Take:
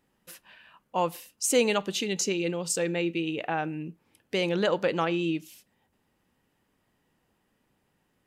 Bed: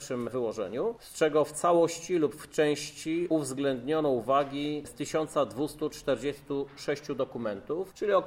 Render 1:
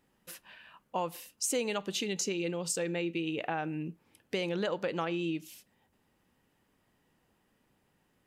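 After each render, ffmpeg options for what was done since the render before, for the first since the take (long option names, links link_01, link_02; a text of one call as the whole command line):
ffmpeg -i in.wav -af "acompressor=threshold=-31dB:ratio=3" out.wav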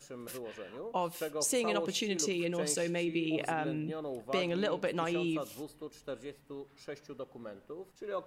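ffmpeg -i in.wav -i bed.wav -filter_complex "[1:a]volume=-12.5dB[link_01];[0:a][link_01]amix=inputs=2:normalize=0" out.wav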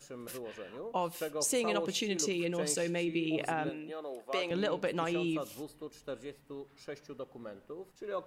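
ffmpeg -i in.wav -filter_complex "[0:a]asettb=1/sr,asplit=3[link_01][link_02][link_03];[link_01]atrim=end=3.694[link_04];[link_02]atrim=start=3.69:end=4.51,asetpts=PTS-STARTPTS,afade=type=in:duration=0.004:curve=qsin,afade=type=out:start_time=0.816:duration=0.004:curve=qsin,highpass=410[link_05];[link_03]atrim=start=4.506[link_06];[link_04][link_05]acrossfade=duration=0.004:curve1=hsin:curve2=qsin[link_07];[link_07][link_06]acrossfade=duration=0.004:curve1=qsin:curve2=hsin" out.wav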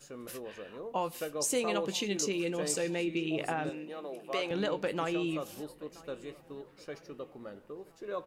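ffmpeg -i in.wav -filter_complex "[0:a]asplit=2[link_01][link_02];[link_02]adelay=20,volume=-13dB[link_03];[link_01][link_03]amix=inputs=2:normalize=0,asplit=2[link_04][link_05];[link_05]adelay=973,lowpass=frequency=2500:poles=1,volume=-21dB,asplit=2[link_06][link_07];[link_07]adelay=973,lowpass=frequency=2500:poles=1,volume=0.53,asplit=2[link_08][link_09];[link_09]adelay=973,lowpass=frequency=2500:poles=1,volume=0.53,asplit=2[link_10][link_11];[link_11]adelay=973,lowpass=frequency=2500:poles=1,volume=0.53[link_12];[link_04][link_06][link_08][link_10][link_12]amix=inputs=5:normalize=0" out.wav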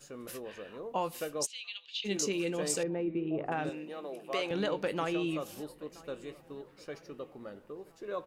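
ffmpeg -i in.wav -filter_complex "[0:a]asplit=3[link_01][link_02][link_03];[link_01]afade=type=out:start_time=1.45:duration=0.02[link_04];[link_02]asuperpass=centerf=3400:order=4:qfactor=2,afade=type=in:start_time=1.45:duration=0.02,afade=type=out:start_time=2.04:duration=0.02[link_05];[link_03]afade=type=in:start_time=2.04:duration=0.02[link_06];[link_04][link_05][link_06]amix=inputs=3:normalize=0,asettb=1/sr,asplit=3[link_07][link_08][link_09];[link_07]atrim=end=2.834[link_10];[link_08]atrim=start=2.83:end=3.52,asetpts=PTS-STARTPTS,afade=type=in:duration=0.004:curve=qsin,afade=type=out:start_time=0.686:duration=0.004:curve=qsin,lowpass=1100[link_11];[link_09]atrim=start=3.516[link_12];[link_10][link_11]acrossfade=duration=0.004:curve1=hsin:curve2=qsin[link_13];[link_13][link_12]acrossfade=duration=0.004:curve1=qsin:curve2=hsin,asettb=1/sr,asplit=3[link_14][link_15][link_16];[link_14]atrim=end=4.624[link_17];[link_15]atrim=start=4.62:end=5.34,asetpts=PTS-STARTPTS,afade=type=in:duration=0.004:curve=qsin,afade=type=out:start_time=0.716:duration=0.004:curve=qsin,bandreject=frequency=7400:width=12[link_18];[link_16]atrim=start=5.336[link_19];[link_17][link_18]acrossfade=duration=0.004:curve1=hsin:curve2=qsin[link_20];[link_20][link_19]acrossfade=duration=0.004:curve1=qsin:curve2=hsin" out.wav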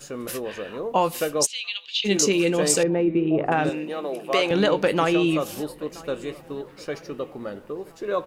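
ffmpeg -i in.wav -af "volume=12dB" out.wav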